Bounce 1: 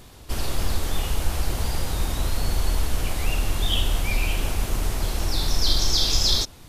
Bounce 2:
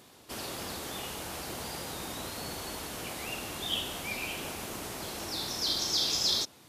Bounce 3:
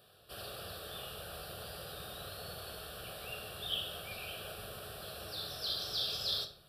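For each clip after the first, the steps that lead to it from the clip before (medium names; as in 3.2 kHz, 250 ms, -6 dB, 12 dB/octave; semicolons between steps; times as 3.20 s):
high-pass 190 Hz 12 dB/octave; trim -6 dB
static phaser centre 1.4 kHz, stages 8; simulated room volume 67 m³, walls mixed, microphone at 0.37 m; trim -4.5 dB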